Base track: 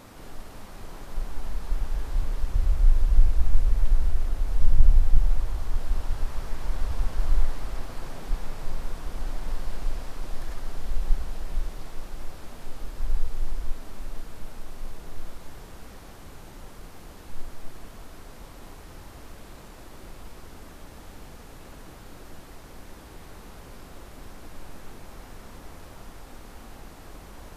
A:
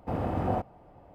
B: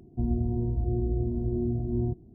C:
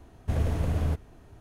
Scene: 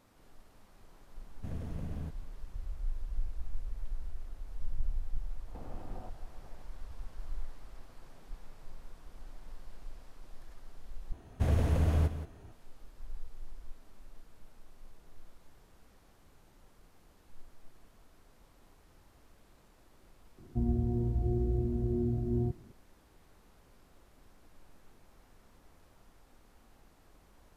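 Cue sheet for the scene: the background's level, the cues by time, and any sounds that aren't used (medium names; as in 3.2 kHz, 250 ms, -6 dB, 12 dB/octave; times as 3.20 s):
base track -17.5 dB
1.15 s: add C -16.5 dB + peaking EQ 190 Hz +9.5 dB 1.2 oct
5.48 s: add A -5.5 dB + compression 5:1, threshold -41 dBFS
11.12 s: replace with C -1.5 dB + delay 177 ms -11 dB
20.38 s: add B -3 dB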